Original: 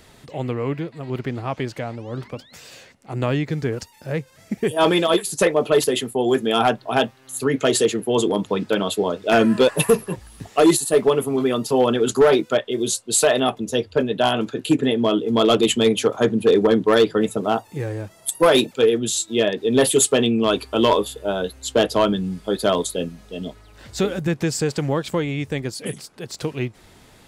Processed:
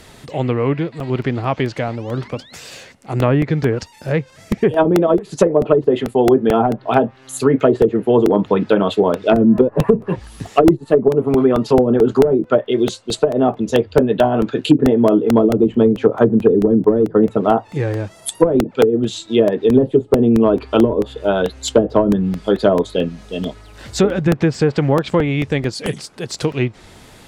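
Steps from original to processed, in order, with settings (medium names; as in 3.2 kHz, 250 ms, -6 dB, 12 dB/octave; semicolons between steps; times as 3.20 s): low-pass that closes with the level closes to 310 Hz, closed at -12 dBFS; crackling interface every 0.22 s, samples 64, repeat, from 1.00 s; trim +7 dB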